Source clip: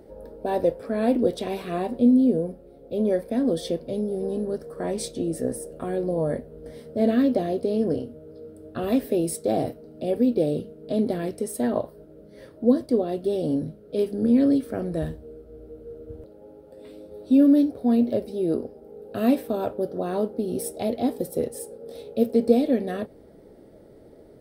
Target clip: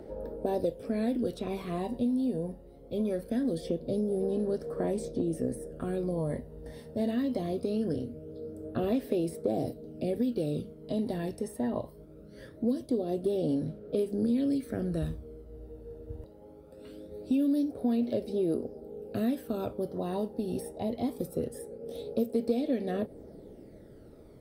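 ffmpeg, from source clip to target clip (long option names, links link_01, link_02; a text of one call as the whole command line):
ffmpeg -i in.wav -filter_complex "[0:a]aphaser=in_gain=1:out_gain=1:delay=1.1:decay=0.48:speed=0.22:type=sinusoidal,acrossover=split=760|2300[link_01][link_02][link_03];[link_01]acompressor=threshold=-25dB:ratio=4[link_04];[link_02]acompressor=threshold=-47dB:ratio=4[link_05];[link_03]acompressor=threshold=-48dB:ratio=4[link_06];[link_04][link_05][link_06]amix=inputs=3:normalize=0,volume=-2.5dB" out.wav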